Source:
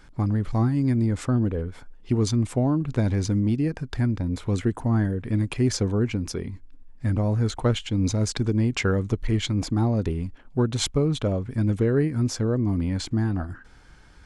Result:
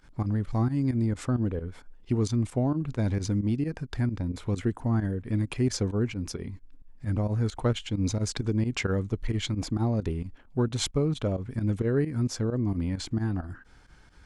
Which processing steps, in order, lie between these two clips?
volume shaper 132 bpm, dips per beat 2, -15 dB, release 68 ms; trim -3.5 dB

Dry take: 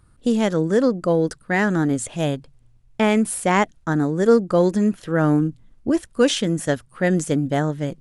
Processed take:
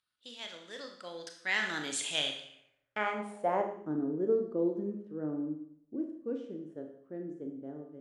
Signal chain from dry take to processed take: Doppler pass-by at 1.97 s, 11 m/s, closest 3.1 m; Schroeder reverb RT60 0.69 s, combs from 26 ms, DRR 3.5 dB; band-pass sweep 3.5 kHz -> 350 Hz, 2.45–3.88 s; trim +8 dB

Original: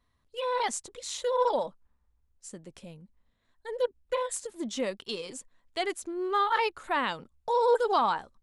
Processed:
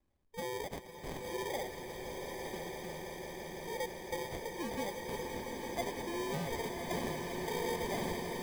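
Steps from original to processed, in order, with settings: 0.62–1.50 s: high-pass 1 kHz 12 dB/octave; compression, threshold -31 dBFS, peak gain reduction 12 dB; sample-and-hold 32×; echo with a slow build-up 168 ms, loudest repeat 8, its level -12 dB; swelling reverb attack 1060 ms, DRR 4 dB; trim -5 dB

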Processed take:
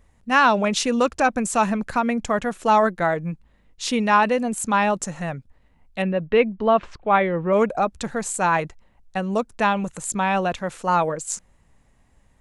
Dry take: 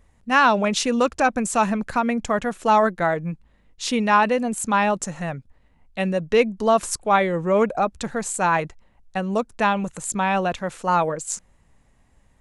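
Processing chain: 6.02–7.53 s: low-pass 3.2 kHz 24 dB/octave

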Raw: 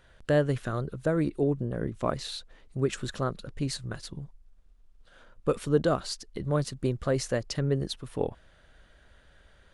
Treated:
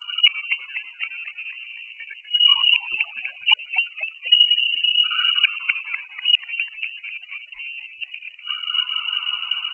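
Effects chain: time reversed locally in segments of 69 ms; expander -51 dBFS; dynamic bell 370 Hz, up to -7 dB, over -43 dBFS, Q 3.8; loudest bins only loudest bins 16; in parallel at -7 dB: saturation -28.5 dBFS, distortion -8 dB; on the sum: inverted gate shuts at -28 dBFS, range -39 dB; on a send: frequency-shifting echo 246 ms, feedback 45%, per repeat +120 Hz, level -9.5 dB; on the sum: frequency inversion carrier 2.9 kHz; loudness maximiser +34.5 dB; trim -1 dB; G.722 64 kbps 16 kHz

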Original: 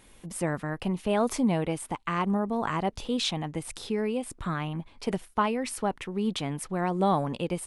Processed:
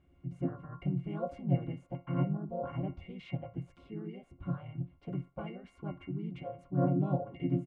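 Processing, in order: pitch-class resonator F, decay 0.2 s; harmony voices -7 st -14 dB, -5 st -1 dB, -4 st -1 dB; band-passed feedback delay 63 ms, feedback 52%, band-pass 960 Hz, level -19 dB

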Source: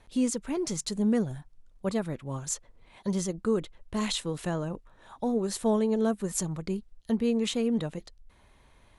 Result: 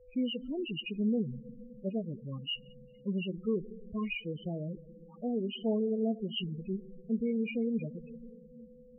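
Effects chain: knee-point frequency compression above 2.1 kHz 4:1; bass shelf 360 Hz +2.5 dB; whistle 500 Hz -50 dBFS; on a send at -13.5 dB: reverberation RT60 3.2 s, pre-delay 5 ms; on the sum: loudest bins only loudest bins 8; trim -6.5 dB

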